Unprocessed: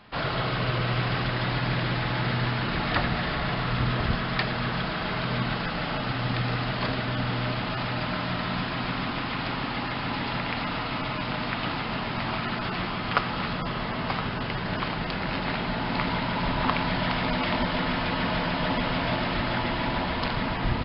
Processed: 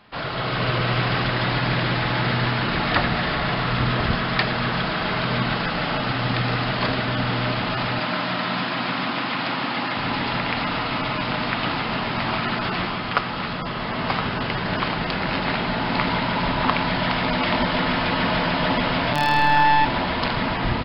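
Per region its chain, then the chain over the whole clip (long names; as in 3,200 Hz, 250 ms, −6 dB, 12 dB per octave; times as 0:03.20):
0:07.99–0:09.97: high-pass filter 170 Hz + notch filter 420 Hz, Q 7.7
0:19.13–0:19.85: phases set to zero 146 Hz + flutter between parallel walls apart 4.5 metres, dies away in 1.5 s
whole clip: automatic gain control gain up to 6 dB; low-shelf EQ 130 Hz −5 dB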